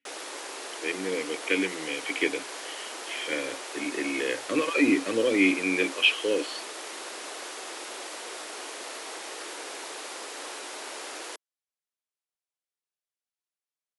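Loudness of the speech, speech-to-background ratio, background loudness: −27.0 LKFS, 10.0 dB, −37.0 LKFS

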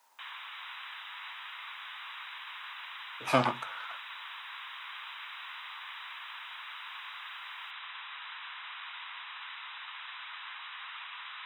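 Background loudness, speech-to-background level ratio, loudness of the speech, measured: −42.0 LKFS, 10.0 dB, −32.0 LKFS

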